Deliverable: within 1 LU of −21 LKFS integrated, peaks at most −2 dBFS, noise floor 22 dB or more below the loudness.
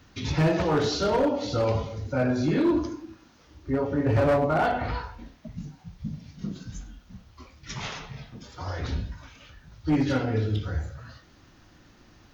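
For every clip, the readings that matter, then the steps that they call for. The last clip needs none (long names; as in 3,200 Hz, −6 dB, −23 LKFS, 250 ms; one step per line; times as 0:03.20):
share of clipped samples 1.3%; peaks flattened at −17.5 dBFS; integrated loudness −26.5 LKFS; sample peak −17.5 dBFS; target loudness −21.0 LKFS
→ clipped peaks rebuilt −17.5 dBFS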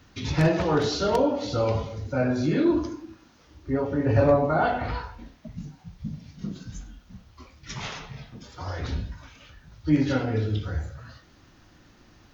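share of clipped samples 0.0%; integrated loudness −25.5 LKFS; sample peak −8.5 dBFS; target loudness −21.0 LKFS
→ level +4.5 dB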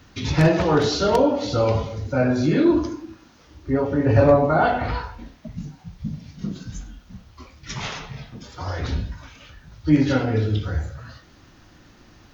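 integrated loudness −21.0 LKFS; sample peak −4.0 dBFS; background noise floor −52 dBFS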